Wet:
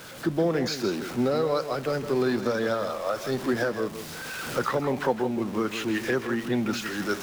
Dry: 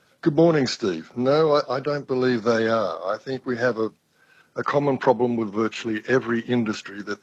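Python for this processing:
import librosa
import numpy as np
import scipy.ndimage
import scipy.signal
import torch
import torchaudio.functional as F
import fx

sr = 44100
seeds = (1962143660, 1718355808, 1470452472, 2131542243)

y = x + 0.5 * 10.0 ** (-30.5 / 20.0) * np.sign(x)
y = fx.recorder_agc(y, sr, target_db=-9.0, rise_db_per_s=12.0, max_gain_db=30)
y = y + 10.0 ** (-10.5 / 20.0) * np.pad(y, (int(162 * sr / 1000.0), 0))[:len(y)]
y = y * librosa.db_to_amplitude(-8.0)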